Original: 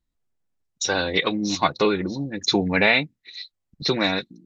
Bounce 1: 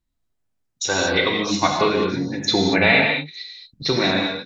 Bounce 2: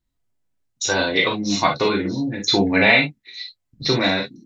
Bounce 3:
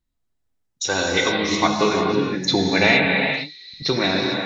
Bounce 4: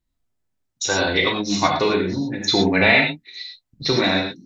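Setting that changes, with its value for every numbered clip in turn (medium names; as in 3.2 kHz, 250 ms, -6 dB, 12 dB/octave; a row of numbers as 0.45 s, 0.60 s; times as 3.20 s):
gated-style reverb, gate: 250 ms, 80 ms, 480 ms, 140 ms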